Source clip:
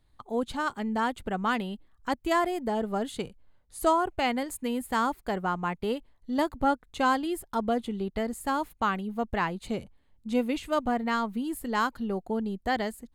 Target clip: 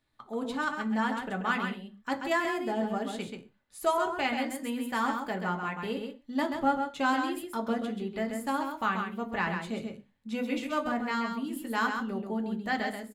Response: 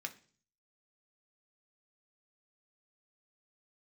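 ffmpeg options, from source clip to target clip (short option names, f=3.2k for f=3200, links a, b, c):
-filter_complex "[0:a]aecho=1:1:133:0.501[a];[1:a]atrim=start_sample=2205,atrim=end_sample=6615[b];[a][b]afir=irnorm=-1:irlink=0"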